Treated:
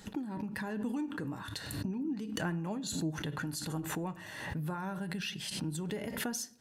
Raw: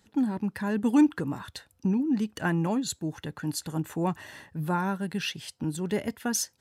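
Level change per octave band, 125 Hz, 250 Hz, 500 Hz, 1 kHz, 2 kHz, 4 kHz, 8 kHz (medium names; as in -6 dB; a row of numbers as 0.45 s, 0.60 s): -6.0 dB, -10.0 dB, -8.0 dB, -8.5 dB, -4.5 dB, -3.0 dB, -6.5 dB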